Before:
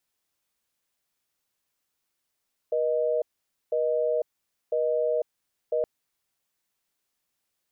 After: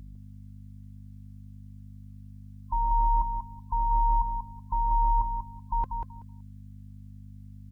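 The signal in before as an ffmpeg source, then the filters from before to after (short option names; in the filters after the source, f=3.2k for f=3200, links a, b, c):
-f lavfi -i "aevalsrc='0.0562*(sin(2*PI*480*t)+sin(2*PI*620*t))*clip(min(mod(t,1),0.5-mod(t,1))/0.005,0,1)':d=3.12:s=44100"
-filter_complex "[0:a]afftfilt=real='real(if(between(b,1,1008),(2*floor((b-1)/24)+1)*24-b,b),0)':imag='imag(if(between(b,1,1008),(2*floor((b-1)/24)+1)*24-b,b),0)*if(between(b,1,1008),-1,1)':win_size=2048:overlap=0.75,aeval=exprs='val(0)+0.00708*(sin(2*PI*50*n/s)+sin(2*PI*2*50*n/s)/2+sin(2*PI*3*50*n/s)/3+sin(2*PI*4*50*n/s)/4+sin(2*PI*5*50*n/s)/5)':c=same,asplit=2[a][b];[b]aecho=0:1:189|378|567:0.501|0.0852|0.0145[c];[a][c]amix=inputs=2:normalize=0"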